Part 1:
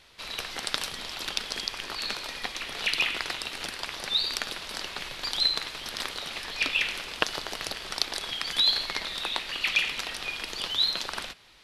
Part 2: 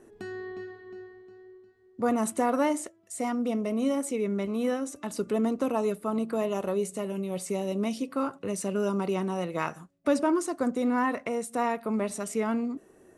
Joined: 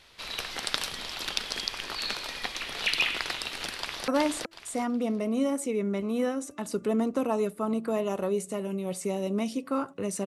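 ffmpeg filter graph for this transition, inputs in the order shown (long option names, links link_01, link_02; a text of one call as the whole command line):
ffmpeg -i cue0.wav -i cue1.wav -filter_complex "[0:a]apad=whole_dur=10.26,atrim=end=10.26,atrim=end=4.082[link_01];[1:a]atrim=start=2.528:end=8.71[link_02];[link_01][link_02]acrossfade=duration=0.004:curve1=hsin:curve2=hsin,asplit=2[link_03][link_04];[link_04]afade=type=in:start_time=3.77:duration=0.01,afade=type=out:start_time=4.08:duration=0.01,aecho=0:1:370|740|1110|1480:0.841395|0.210349|0.0525872|0.0131468[link_05];[link_03][link_05]amix=inputs=2:normalize=0" out.wav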